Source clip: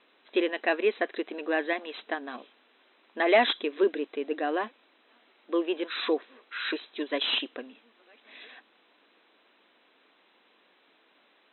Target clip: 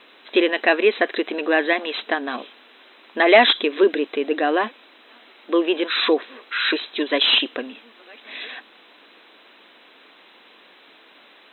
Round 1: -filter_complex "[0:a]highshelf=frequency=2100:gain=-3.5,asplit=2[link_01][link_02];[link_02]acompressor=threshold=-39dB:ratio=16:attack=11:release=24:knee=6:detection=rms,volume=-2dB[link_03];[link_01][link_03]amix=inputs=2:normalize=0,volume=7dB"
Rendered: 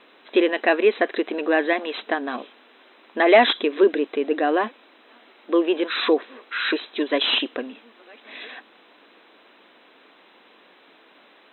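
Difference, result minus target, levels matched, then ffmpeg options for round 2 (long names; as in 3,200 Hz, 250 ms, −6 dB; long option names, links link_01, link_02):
4,000 Hz band −3.0 dB
-filter_complex "[0:a]highshelf=frequency=2100:gain=4.5,asplit=2[link_01][link_02];[link_02]acompressor=threshold=-39dB:ratio=16:attack=11:release=24:knee=6:detection=rms,volume=-2dB[link_03];[link_01][link_03]amix=inputs=2:normalize=0,volume=7dB"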